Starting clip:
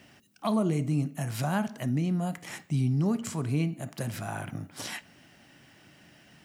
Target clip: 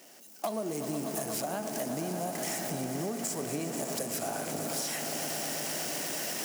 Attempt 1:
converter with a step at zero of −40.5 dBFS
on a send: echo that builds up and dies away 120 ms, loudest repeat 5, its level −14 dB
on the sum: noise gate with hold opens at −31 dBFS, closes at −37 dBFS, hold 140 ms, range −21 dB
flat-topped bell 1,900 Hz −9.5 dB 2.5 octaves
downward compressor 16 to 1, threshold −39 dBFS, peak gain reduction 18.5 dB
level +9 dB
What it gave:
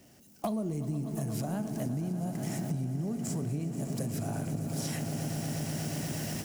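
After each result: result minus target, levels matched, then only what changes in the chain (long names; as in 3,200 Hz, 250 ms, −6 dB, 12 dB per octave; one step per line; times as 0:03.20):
converter with a step at zero: distortion −7 dB; 500 Hz band −4.0 dB
change: converter with a step at zero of −32 dBFS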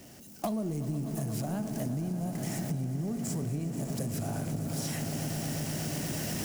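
500 Hz band −4.0 dB
add after noise gate with hold: high-pass filter 460 Hz 12 dB per octave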